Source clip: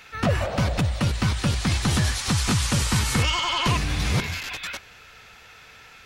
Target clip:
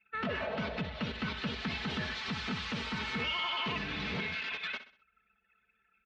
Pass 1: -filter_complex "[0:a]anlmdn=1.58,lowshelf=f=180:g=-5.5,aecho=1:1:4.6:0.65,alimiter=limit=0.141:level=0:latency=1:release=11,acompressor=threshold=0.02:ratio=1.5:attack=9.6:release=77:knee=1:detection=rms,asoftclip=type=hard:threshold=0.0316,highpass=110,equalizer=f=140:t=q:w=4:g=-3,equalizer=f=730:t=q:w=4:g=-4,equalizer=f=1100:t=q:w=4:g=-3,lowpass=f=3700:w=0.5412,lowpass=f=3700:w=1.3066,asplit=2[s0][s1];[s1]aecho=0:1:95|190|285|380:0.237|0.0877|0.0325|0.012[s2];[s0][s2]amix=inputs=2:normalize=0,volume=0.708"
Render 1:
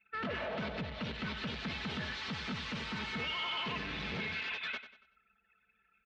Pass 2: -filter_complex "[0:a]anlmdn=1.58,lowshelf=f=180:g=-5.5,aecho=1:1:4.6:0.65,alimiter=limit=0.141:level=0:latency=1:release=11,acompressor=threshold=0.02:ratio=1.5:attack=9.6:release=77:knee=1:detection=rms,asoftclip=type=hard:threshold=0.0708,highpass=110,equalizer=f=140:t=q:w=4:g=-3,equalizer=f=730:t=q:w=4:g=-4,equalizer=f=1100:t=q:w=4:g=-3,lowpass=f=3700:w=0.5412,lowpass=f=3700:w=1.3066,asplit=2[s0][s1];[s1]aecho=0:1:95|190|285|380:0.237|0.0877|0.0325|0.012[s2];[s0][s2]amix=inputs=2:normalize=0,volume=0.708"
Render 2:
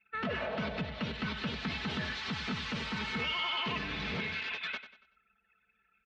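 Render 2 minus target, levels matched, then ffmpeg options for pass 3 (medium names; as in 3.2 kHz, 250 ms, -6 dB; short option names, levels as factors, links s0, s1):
echo 31 ms late
-filter_complex "[0:a]anlmdn=1.58,lowshelf=f=180:g=-5.5,aecho=1:1:4.6:0.65,alimiter=limit=0.141:level=0:latency=1:release=11,acompressor=threshold=0.02:ratio=1.5:attack=9.6:release=77:knee=1:detection=rms,asoftclip=type=hard:threshold=0.0708,highpass=110,equalizer=f=140:t=q:w=4:g=-3,equalizer=f=730:t=q:w=4:g=-4,equalizer=f=1100:t=q:w=4:g=-3,lowpass=f=3700:w=0.5412,lowpass=f=3700:w=1.3066,asplit=2[s0][s1];[s1]aecho=0:1:64|128|192|256:0.237|0.0877|0.0325|0.012[s2];[s0][s2]amix=inputs=2:normalize=0,volume=0.708"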